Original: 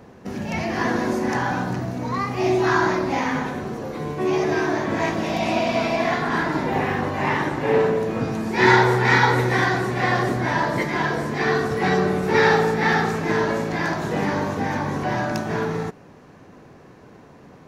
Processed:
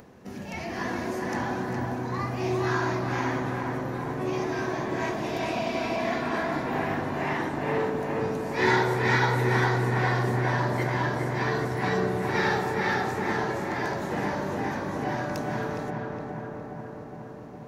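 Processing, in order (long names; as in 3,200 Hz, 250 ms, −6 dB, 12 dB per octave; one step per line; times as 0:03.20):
high-shelf EQ 10,000 Hz +7 dB
hum removal 54.9 Hz, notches 30
upward compression, threshold −38 dBFS
feedback echo with a low-pass in the loop 413 ms, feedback 75%, low-pass 2,000 Hz, level −3 dB
level −8 dB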